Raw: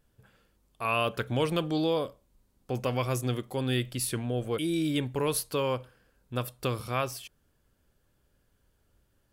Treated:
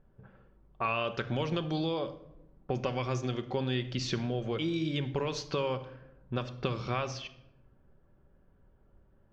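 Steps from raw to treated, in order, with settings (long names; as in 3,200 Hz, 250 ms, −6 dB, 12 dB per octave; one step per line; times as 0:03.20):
low-pass that shuts in the quiet parts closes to 1,100 Hz, open at −25 dBFS
elliptic low-pass filter 6,400 Hz, stop band 40 dB
downward compressor, threshold −36 dBFS, peak gain reduction 12.5 dB
convolution reverb RT60 0.85 s, pre-delay 5 ms, DRR 8 dB
level +6.5 dB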